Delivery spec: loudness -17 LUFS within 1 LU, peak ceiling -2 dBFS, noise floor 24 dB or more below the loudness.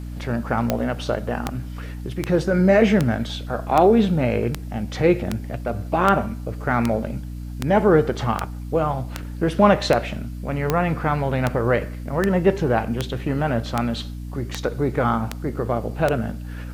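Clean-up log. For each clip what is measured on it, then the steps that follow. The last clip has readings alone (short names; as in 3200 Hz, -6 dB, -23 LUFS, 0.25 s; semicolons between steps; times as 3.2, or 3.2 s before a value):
clicks 21; hum 60 Hz; harmonics up to 300 Hz; hum level -30 dBFS; loudness -22.0 LUFS; peak -3.0 dBFS; loudness target -17.0 LUFS
-> de-click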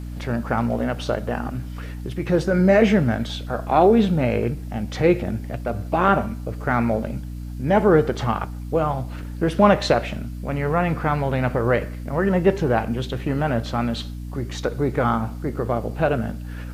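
clicks 0; hum 60 Hz; harmonics up to 300 Hz; hum level -30 dBFS
-> de-hum 60 Hz, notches 5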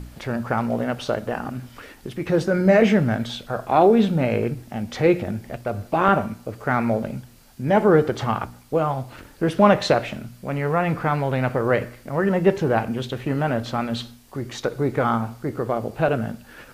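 hum none; loudness -22.0 LUFS; peak -3.5 dBFS; loudness target -17.0 LUFS
-> gain +5 dB; limiter -2 dBFS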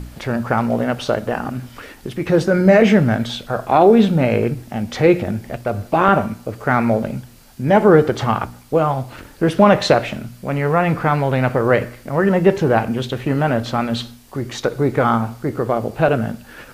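loudness -17.5 LUFS; peak -2.0 dBFS; noise floor -43 dBFS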